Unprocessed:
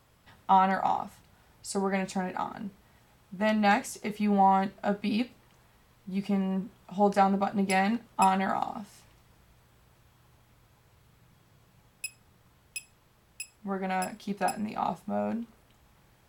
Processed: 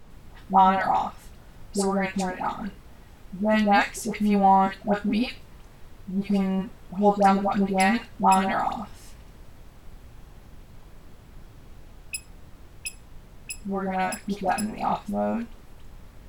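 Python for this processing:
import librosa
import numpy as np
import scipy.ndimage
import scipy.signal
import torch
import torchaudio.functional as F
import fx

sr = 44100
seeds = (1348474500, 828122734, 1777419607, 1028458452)

y = fx.dispersion(x, sr, late='highs', ms=104.0, hz=890.0)
y = fx.dmg_noise_colour(y, sr, seeds[0], colour='brown', level_db=-49.0)
y = F.gain(torch.from_numpy(y), 4.5).numpy()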